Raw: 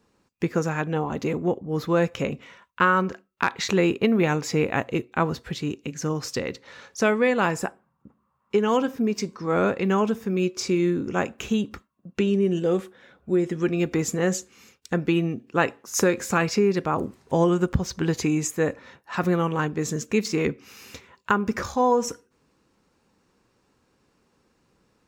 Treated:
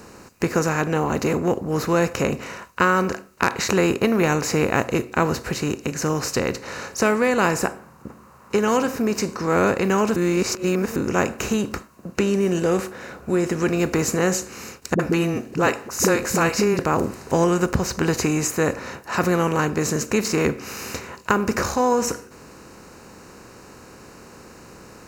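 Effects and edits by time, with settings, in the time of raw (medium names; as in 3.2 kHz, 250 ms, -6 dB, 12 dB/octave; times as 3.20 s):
10.16–10.96 s: reverse
14.94–16.79 s: phase dispersion highs, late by 54 ms, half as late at 330 Hz
whole clip: spectral levelling over time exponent 0.6; treble shelf 9 kHz +8 dB; band-stop 3.4 kHz, Q 5.8; trim -1 dB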